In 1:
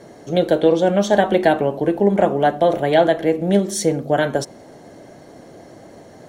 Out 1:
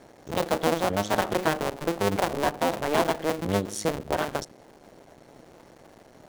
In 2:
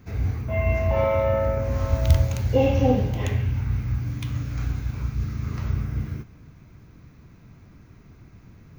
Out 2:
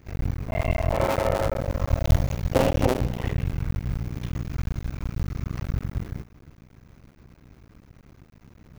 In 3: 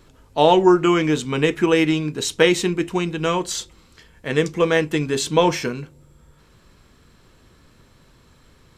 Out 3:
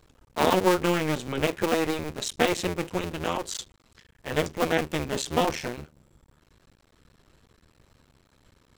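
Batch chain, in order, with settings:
cycle switcher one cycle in 2, muted; normalise loudness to -27 LUFS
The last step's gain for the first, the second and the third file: -6.5 dB, +0.5 dB, -5.0 dB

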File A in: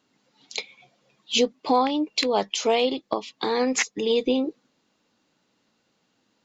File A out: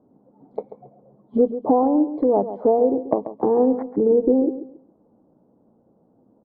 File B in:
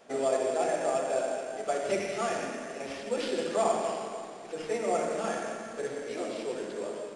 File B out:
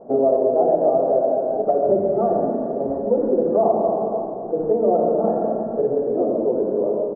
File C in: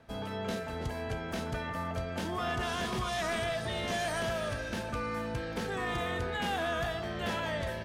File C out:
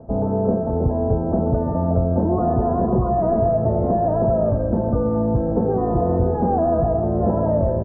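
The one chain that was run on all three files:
inverse Chebyshev low-pass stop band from 2.5 kHz, stop band 60 dB; compression 2:1, threshold -34 dBFS; on a send: feedback delay 137 ms, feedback 25%, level -12 dB; on the sum: normalise loudness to -20 LUFS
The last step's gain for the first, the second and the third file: +13.5 dB, +16.5 dB, +18.5 dB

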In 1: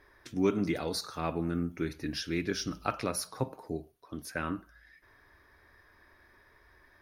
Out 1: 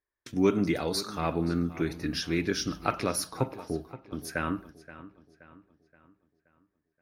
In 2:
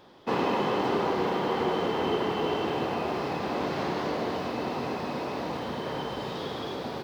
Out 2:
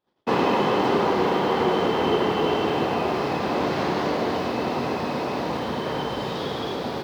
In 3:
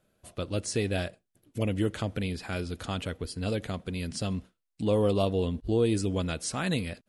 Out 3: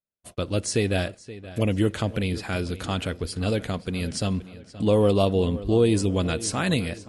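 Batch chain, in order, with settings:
gate -50 dBFS, range -35 dB; filtered feedback delay 525 ms, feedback 45%, low-pass 4.9 kHz, level -16 dB; peak normalisation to -9 dBFS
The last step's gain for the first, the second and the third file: +3.5 dB, +5.5 dB, +5.5 dB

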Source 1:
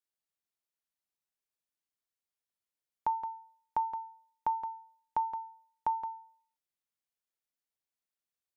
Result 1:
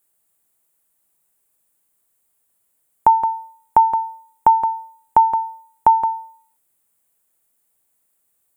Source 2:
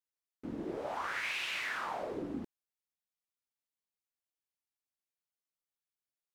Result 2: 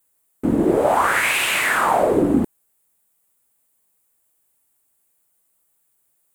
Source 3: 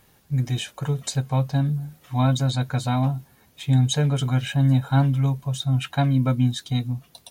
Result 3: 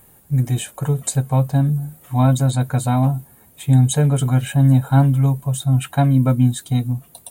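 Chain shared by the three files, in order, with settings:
FFT filter 710 Hz 0 dB, 5.6 kHz -10 dB, 8.2 kHz +7 dB; normalise loudness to -18 LUFS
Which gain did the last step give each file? +19.5 dB, +22.5 dB, +5.5 dB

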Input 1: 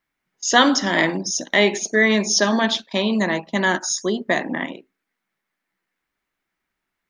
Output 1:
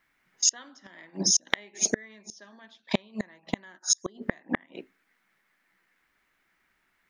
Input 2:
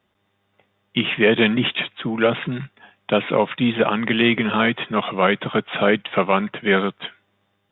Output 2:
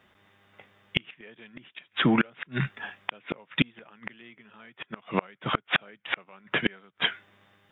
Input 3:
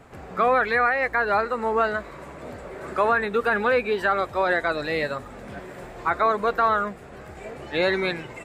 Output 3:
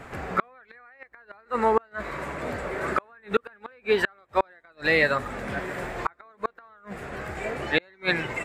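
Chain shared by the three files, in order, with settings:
peaking EQ 1.8 kHz +6 dB 1.3 oct; in parallel at -2.5 dB: compression 10:1, threshold -26 dBFS; on the sum: inverted gate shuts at -9 dBFS, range -36 dB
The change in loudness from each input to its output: -8.5 LU, -9.5 LU, -4.5 LU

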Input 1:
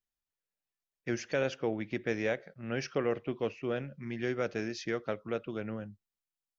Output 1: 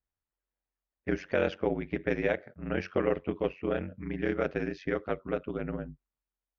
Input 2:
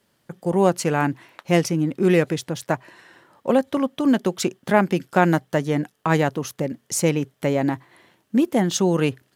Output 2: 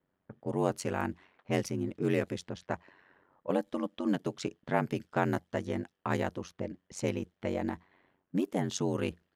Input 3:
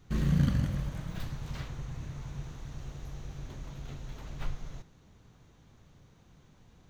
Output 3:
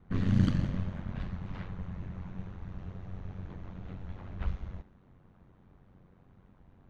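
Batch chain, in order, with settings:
level-controlled noise filter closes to 1.6 kHz, open at -16 dBFS; ring modulator 46 Hz; peak normalisation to -12 dBFS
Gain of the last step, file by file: +6.0 dB, -9.0 dB, +3.0 dB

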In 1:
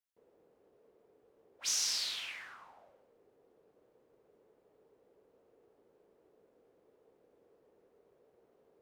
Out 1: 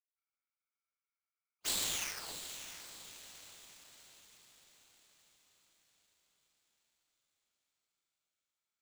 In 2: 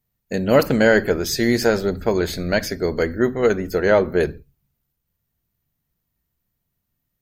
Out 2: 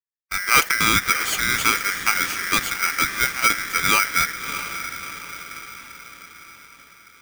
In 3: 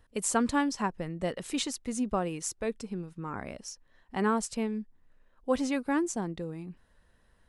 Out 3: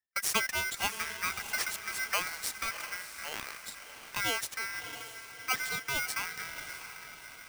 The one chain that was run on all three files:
gate -45 dBFS, range -26 dB; harmonic-percussive split harmonic -6 dB; in parallel at -7 dB: bit crusher 6-bit; on the sum: echo that smears into a reverb 654 ms, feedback 53%, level -10 dB; polarity switched at an audio rate 1.8 kHz; trim -3.5 dB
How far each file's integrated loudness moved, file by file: -4.5 LU, 0.0 LU, -1.5 LU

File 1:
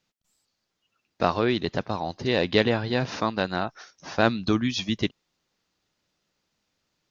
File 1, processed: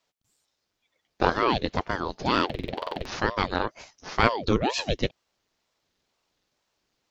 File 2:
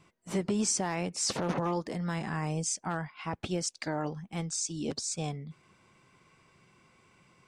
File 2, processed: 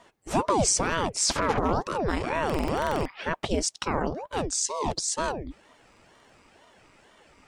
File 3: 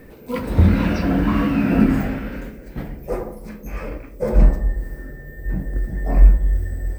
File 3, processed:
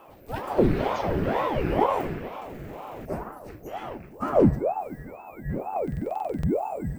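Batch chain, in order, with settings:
buffer glitch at 2.45/5.83 s, samples 2048, times 12; ring modulator with a swept carrier 460 Hz, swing 80%, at 2.1 Hz; normalise loudness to -27 LUFS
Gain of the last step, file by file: +3.0 dB, +9.0 dB, -4.5 dB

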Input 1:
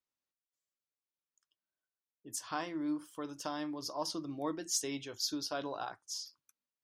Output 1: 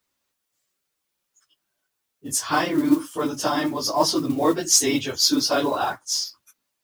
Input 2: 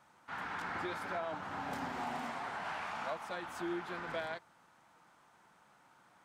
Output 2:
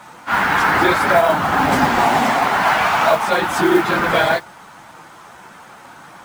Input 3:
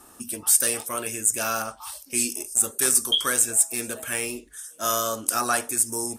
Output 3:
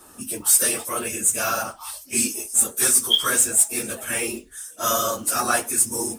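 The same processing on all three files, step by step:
phase randomisation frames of 50 ms; modulation noise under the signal 25 dB; peak normalisation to -1.5 dBFS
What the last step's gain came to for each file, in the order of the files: +16.5 dB, +24.5 dB, +2.5 dB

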